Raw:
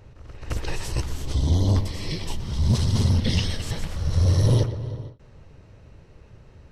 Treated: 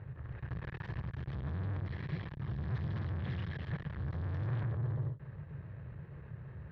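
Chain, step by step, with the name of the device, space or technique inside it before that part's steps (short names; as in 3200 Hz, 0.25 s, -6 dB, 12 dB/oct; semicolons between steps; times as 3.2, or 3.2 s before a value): guitar amplifier (tube stage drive 39 dB, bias 0.4; tone controls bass +9 dB, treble -10 dB; speaker cabinet 90–3500 Hz, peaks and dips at 140 Hz +7 dB, 250 Hz -9 dB, 1100 Hz +4 dB, 1700 Hz +10 dB, 2800 Hz -4 dB); gain -2.5 dB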